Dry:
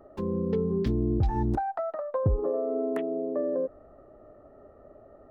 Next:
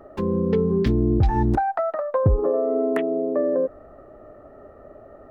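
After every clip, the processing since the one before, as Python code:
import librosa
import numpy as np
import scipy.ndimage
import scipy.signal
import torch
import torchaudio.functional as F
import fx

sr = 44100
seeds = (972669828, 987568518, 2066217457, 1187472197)

y = fx.peak_eq(x, sr, hz=2000.0, db=5.0, octaves=1.4)
y = y * librosa.db_to_amplitude(6.5)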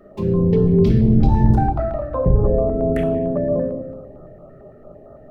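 y = fx.octave_divider(x, sr, octaves=1, level_db=-2.0)
y = fx.room_shoebox(y, sr, seeds[0], volume_m3=530.0, walls='mixed', distance_m=1.3)
y = fx.filter_held_notch(y, sr, hz=8.9, low_hz=890.0, high_hz=2200.0)
y = y * librosa.db_to_amplitude(-1.0)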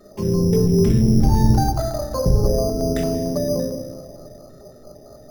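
y = fx.rev_plate(x, sr, seeds[1], rt60_s=2.9, hf_ratio=0.9, predelay_ms=0, drr_db=14.5)
y = np.repeat(y[::8], 8)[:len(y)]
y = y * librosa.db_to_amplitude(-1.0)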